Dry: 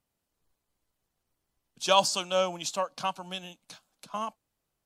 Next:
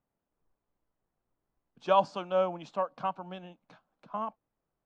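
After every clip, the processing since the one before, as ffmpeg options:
-af "lowpass=1400,equalizer=f=81:t=o:w=0.77:g=-6.5"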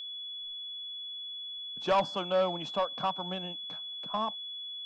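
-filter_complex "[0:a]asplit=2[s0][s1];[s1]acompressor=threshold=0.0158:ratio=6,volume=0.891[s2];[s0][s2]amix=inputs=2:normalize=0,aeval=exprs='val(0)+0.0126*sin(2*PI*3400*n/s)':c=same,asoftclip=type=tanh:threshold=0.106"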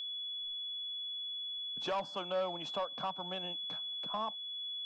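-filter_complex "[0:a]acrossover=split=340[s0][s1];[s0]acompressor=threshold=0.00316:ratio=6[s2];[s1]alimiter=level_in=1.26:limit=0.0631:level=0:latency=1:release=430,volume=0.794[s3];[s2][s3]amix=inputs=2:normalize=0"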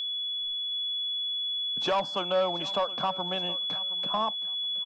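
-af "aecho=1:1:720|1440:0.133|0.028,volume=2.66"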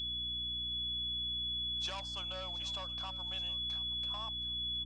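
-af "aderivative,aeval=exprs='val(0)+0.00398*(sin(2*PI*60*n/s)+sin(2*PI*2*60*n/s)/2+sin(2*PI*3*60*n/s)/3+sin(2*PI*4*60*n/s)/4+sin(2*PI*5*60*n/s)/5)':c=same,aresample=22050,aresample=44100"

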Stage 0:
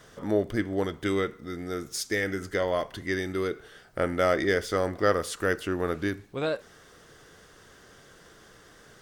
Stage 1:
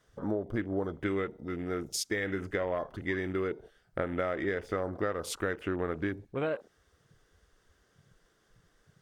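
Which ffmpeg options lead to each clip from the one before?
-af "acompressor=threshold=0.0447:ratio=20,afwtdn=0.00708"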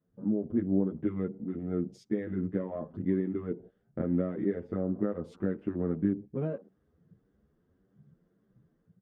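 -filter_complex "[0:a]bandpass=f=200:t=q:w=2.2:csg=0,dynaudnorm=f=220:g=3:m=2.51,asplit=2[s0][s1];[s1]adelay=9,afreqshift=1.7[s2];[s0][s2]amix=inputs=2:normalize=1,volume=1.78"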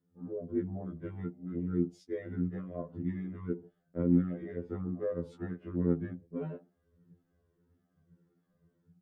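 -af "afftfilt=real='re*2*eq(mod(b,4),0)':imag='im*2*eq(mod(b,4),0)':win_size=2048:overlap=0.75"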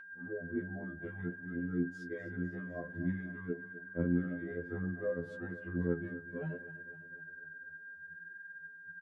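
-af "aeval=exprs='val(0)+0.00708*sin(2*PI*1600*n/s)':c=same,flanger=delay=7.1:depth=7.8:regen=44:speed=0.57:shape=sinusoidal,aecho=1:1:253|506|759|1012|1265|1518:0.168|0.099|0.0584|0.0345|0.0203|0.012,volume=1.12"

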